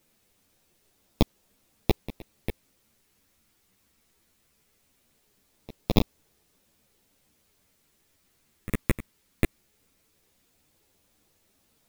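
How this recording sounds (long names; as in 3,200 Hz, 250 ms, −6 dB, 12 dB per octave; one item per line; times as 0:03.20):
aliases and images of a low sample rate 1,500 Hz, jitter 0%
phaser sweep stages 4, 0.2 Hz, lowest notch 800–1,600 Hz
a quantiser's noise floor 12 bits, dither triangular
a shimmering, thickened sound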